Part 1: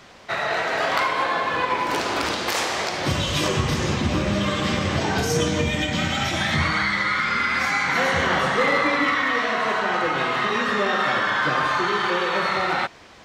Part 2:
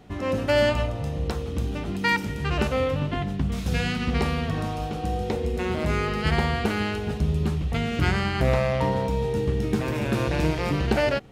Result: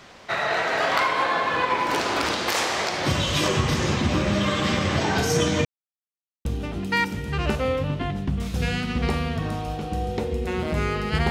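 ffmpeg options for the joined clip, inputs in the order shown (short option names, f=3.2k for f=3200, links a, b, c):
-filter_complex "[0:a]apad=whole_dur=11.3,atrim=end=11.3,asplit=2[a][b];[a]atrim=end=5.65,asetpts=PTS-STARTPTS,afade=t=out:st=5.646:d=0.004:c=hsin[c];[b]atrim=start=5.65:end=6.45,asetpts=PTS-STARTPTS,volume=0[d];[1:a]atrim=start=1.57:end=6.42,asetpts=PTS-STARTPTS,afade=t=in:d=0.004:c=hsin[e];[c][d][e]concat=n=3:v=0:a=1"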